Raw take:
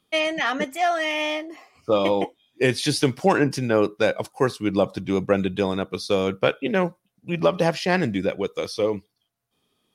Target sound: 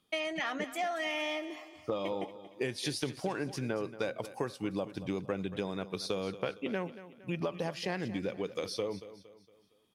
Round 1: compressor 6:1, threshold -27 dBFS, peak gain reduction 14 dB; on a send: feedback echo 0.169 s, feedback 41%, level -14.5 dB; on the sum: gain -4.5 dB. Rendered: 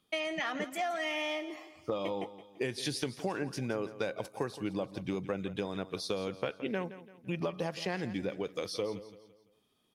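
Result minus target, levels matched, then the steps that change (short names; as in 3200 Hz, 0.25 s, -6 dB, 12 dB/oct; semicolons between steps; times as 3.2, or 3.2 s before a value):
echo 62 ms early
change: feedback echo 0.231 s, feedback 41%, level -14.5 dB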